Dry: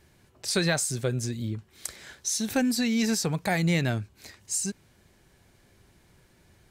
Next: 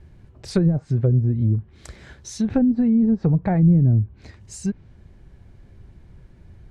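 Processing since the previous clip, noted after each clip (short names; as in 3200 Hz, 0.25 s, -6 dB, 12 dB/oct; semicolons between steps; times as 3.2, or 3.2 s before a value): RIAA curve playback; treble ducked by the level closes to 320 Hz, closed at -14 dBFS; gain +1.5 dB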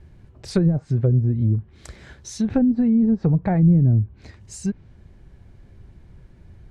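nothing audible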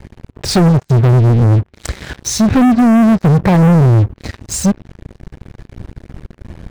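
sample leveller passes 5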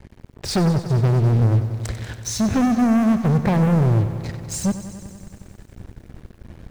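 lo-fi delay 94 ms, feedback 80%, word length 7-bit, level -13 dB; gain -8.5 dB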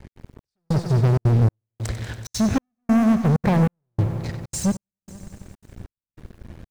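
step gate "x.xxx....xxxxx" 192 bpm -60 dB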